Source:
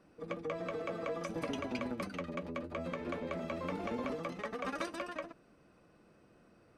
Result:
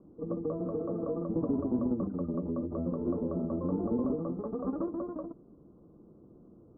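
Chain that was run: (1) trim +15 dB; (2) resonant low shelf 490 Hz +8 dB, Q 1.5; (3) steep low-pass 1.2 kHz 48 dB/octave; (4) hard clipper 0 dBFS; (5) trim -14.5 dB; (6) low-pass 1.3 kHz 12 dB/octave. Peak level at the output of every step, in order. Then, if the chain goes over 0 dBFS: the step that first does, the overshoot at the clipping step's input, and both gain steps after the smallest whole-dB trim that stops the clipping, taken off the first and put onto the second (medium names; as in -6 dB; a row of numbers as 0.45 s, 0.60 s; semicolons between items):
-7.5 dBFS, -4.0 dBFS, -4.5 dBFS, -4.5 dBFS, -19.0 dBFS, -19.0 dBFS; nothing clips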